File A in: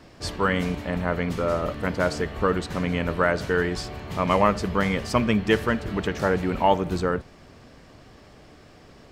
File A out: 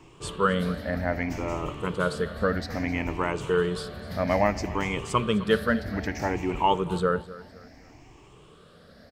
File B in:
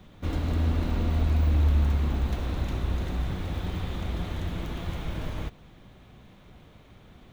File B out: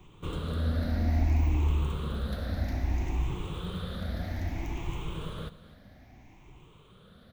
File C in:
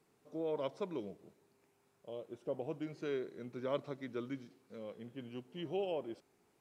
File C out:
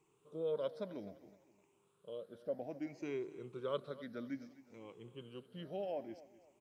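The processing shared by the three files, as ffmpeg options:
-filter_complex "[0:a]afftfilt=real='re*pow(10,13/40*sin(2*PI*(0.69*log(max(b,1)*sr/1024/100)/log(2)-(0.61)*(pts-256)/sr)))':imag='im*pow(10,13/40*sin(2*PI*(0.69*log(max(b,1)*sr/1024/100)/log(2)-(0.61)*(pts-256)/sr)))':win_size=1024:overlap=0.75,asplit=2[s0][s1];[s1]aecho=0:1:256|512|768:0.126|0.0428|0.0146[s2];[s0][s2]amix=inputs=2:normalize=0,volume=0.596"

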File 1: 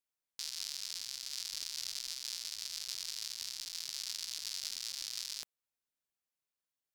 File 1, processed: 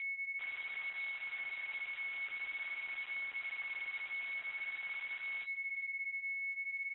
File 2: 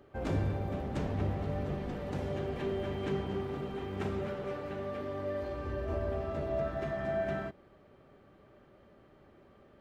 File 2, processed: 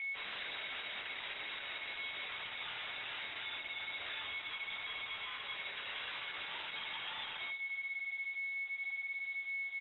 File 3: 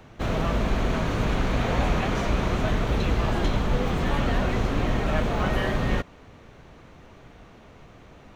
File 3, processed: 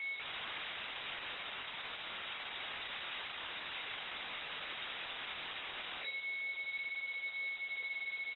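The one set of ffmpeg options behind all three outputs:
-filter_complex "[0:a]bandreject=f=50:t=h:w=6,bandreject=f=100:t=h:w=6,bandreject=f=150:t=h:w=6,bandreject=f=200:t=h:w=6,bandreject=f=250:t=h:w=6,bandreject=f=300:t=h:w=6,bandreject=f=350:t=h:w=6,bandreject=f=400:t=h:w=6,bandreject=f=450:t=h:w=6,acrossover=split=2600[s0][s1];[s1]acompressor=mode=upward:threshold=0.00355:ratio=2.5[s2];[s0][s2]amix=inputs=2:normalize=0,alimiter=limit=0.112:level=0:latency=1:release=189,aeval=exprs='val(0)+0.0178*sin(2*PI*1700*n/s)':c=same,aeval=exprs='0.0188*(abs(mod(val(0)/0.0188+3,4)-2)-1)':c=same,flanger=delay=17.5:depth=7.2:speed=0.47,asoftclip=type=tanh:threshold=0.0126,asplit=2[s3][s4];[s4]aecho=0:1:399:0.119[s5];[s3][s5]amix=inputs=2:normalize=0,lowpass=f=3300:t=q:w=0.5098,lowpass=f=3300:t=q:w=0.6013,lowpass=f=3300:t=q:w=0.9,lowpass=f=3300:t=q:w=2.563,afreqshift=-3900,volume=1.33" -ar 48000 -c:a libopus -b:a 12k

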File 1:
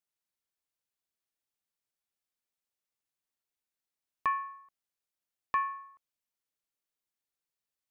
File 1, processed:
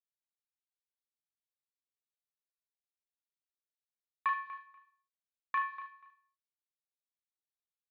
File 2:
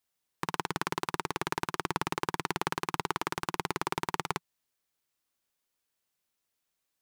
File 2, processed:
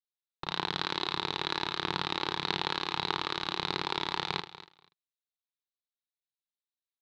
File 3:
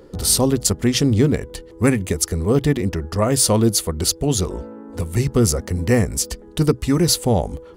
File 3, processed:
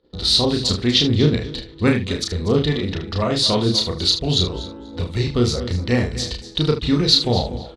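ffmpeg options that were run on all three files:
-filter_complex "[0:a]agate=range=0.0708:threshold=0.00794:ratio=16:detection=peak,asplit=2[s0][s1];[s1]aecho=0:1:242|484:0.178|0.0302[s2];[s0][s2]amix=inputs=2:normalize=0,aphaser=in_gain=1:out_gain=1:delay=3.6:decay=0.21:speed=1.6:type=sinusoidal,lowpass=f=3900:t=q:w=6.6,asplit=2[s3][s4];[s4]aecho=0:1:33|76:0.668|0.282[s5];[s3][s5]amix=inputs=2:normalize=0,volume=0.631"

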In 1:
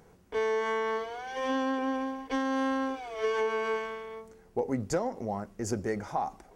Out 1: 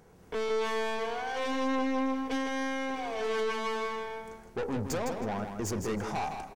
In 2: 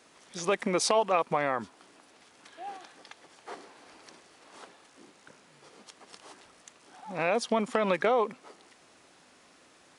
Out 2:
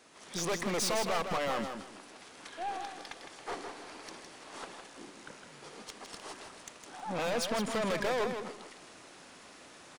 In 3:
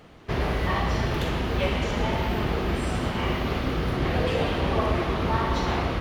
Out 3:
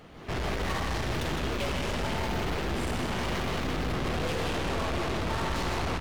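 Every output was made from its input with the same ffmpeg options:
-af "aeval=exprs='(tanh(63.1*val(0)+0.3)-tanh(0.3))/63.1':c=same,aecho=1:1:159|318|477:0.447|0.103|0.0236,dynaudnorm=f=120:g=3:m=2"

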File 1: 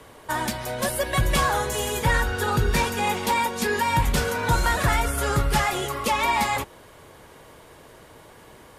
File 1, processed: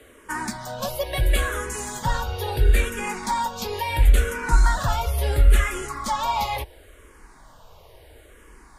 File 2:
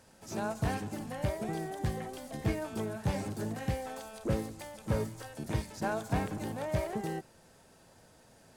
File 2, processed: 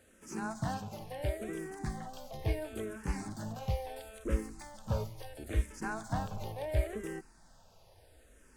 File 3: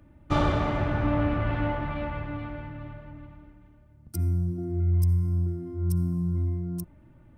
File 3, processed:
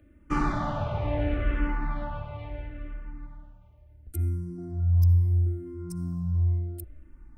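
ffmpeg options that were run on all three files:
-filter_complex "[0:a]asubboost=boost=8.5:cutoff=51,asplit=2[s0][s1];[s1]afreqshift=-0.73[s2];[s0][s2]amix=inputs=2:normalize=1"

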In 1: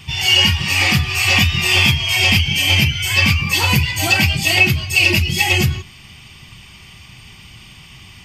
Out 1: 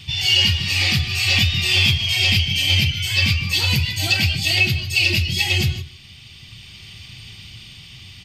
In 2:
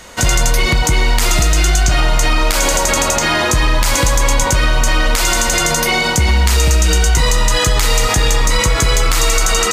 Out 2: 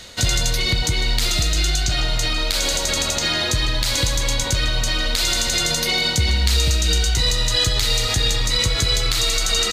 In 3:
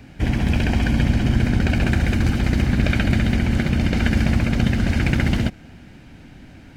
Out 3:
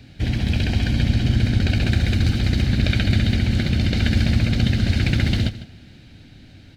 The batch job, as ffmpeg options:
-af "equalizer=f=100:t=o:w=0.67:g=7,equalizer=f=1000:t=o:w=0.67:g=-7,equalizer=f=4000:t=o:w=0.67:g=12,dynaudnorm=f=140:g=17:m=1.78,aecho=1:1:152:0.178,volume=0.631"

